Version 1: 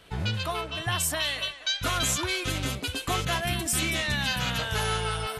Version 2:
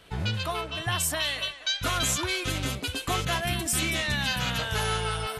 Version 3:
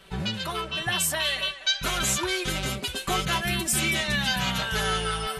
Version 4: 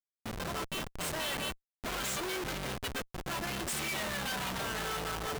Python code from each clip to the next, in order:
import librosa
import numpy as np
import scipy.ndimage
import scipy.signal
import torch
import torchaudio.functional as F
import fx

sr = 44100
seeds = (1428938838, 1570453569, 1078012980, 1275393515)

y1 = x
y2 = y1 + 0.76 * np.pad(y1, (int(5.2 * sr / 1000.0), 0))[:len(y1)]
y3 = fx.auto_swell(y2, sr, attack_ms=337.0)
y3 = fx.schmitt(y3, sr, flips_db=-29.0)
y3 = fx.low_shelf(y3, sr, hz=260.0, db=-7.0)
y3 = F.gain(torch.from_numpy(y3), -5.5).numpy()